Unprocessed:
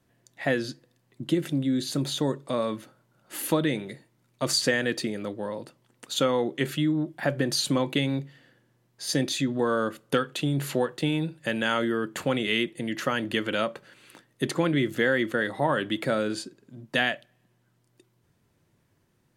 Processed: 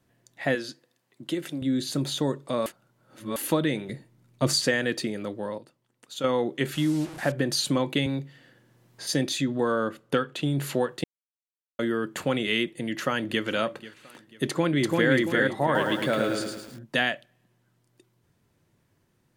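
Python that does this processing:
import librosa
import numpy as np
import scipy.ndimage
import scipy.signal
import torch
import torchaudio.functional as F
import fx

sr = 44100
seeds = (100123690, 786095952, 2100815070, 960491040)

y = fx.highpass(x, sr, hz=460.0, slope=6, at=(0.55, 1.62))
y = fx.low_shelf(y, sr, hz=290.0, db=10.0, at=(3.89, 4.61))
y = fx.delta_mod(y, sr, bps=64000, step_db=-34.5, at=(6.74, 7.32))
y = fx.band_squash(y, sr, depth_pct=40, at=(8.06, 9.07))
y = fx.high_shelf(y, sr, hz=5000.0, db=-8.0, at=(9.72, 10.43))
y = fx.echo_throw(y, sr, start_s=12.8, length_s=0.65, ms=490, feedback_pct=40, wet_db=-17.5)
y = fx.echo_throw(y, sr, start_s=14.46, length_s=0.67, ms=340, feedback_pct=35, wet_db=-1.5)
y = fx.echo_crushed(y, sr, ms=109, feedback_pct=55, bits=8, wet_db=-3.5, at=(15.64, 16.79))
y = fx.edit(y, sr, fx.reverse_span(start_s=2.66, length_s=0.7),
    fx.clip_gain(start_s=5.58, length_s=0.66, db=-9.0),
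    fx.silence(start_s=11.04, length_s=0.75), tone=tone)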